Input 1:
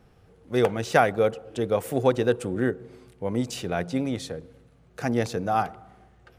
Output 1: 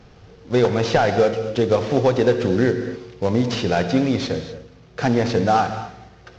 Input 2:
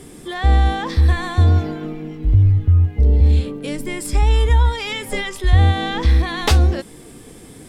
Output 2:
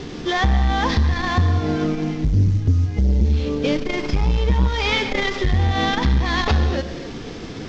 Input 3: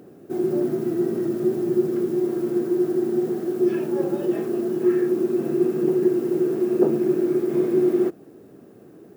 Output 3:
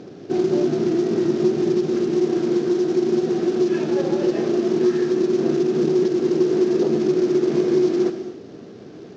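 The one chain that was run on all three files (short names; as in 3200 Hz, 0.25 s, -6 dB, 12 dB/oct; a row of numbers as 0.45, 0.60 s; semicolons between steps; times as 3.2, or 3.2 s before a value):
CVSD 32 kbps; in parallel at +1.5 dB: limiter -11.5 dBFS; on the sum: compressor 4:1, threshold -16 dBFS; non-linear reverb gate 0.28 s flat, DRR 7.5 dB; core saturation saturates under 150 Hz; match loudness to -20 LUFS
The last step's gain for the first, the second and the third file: +3.0, +1.5, +0.5 dB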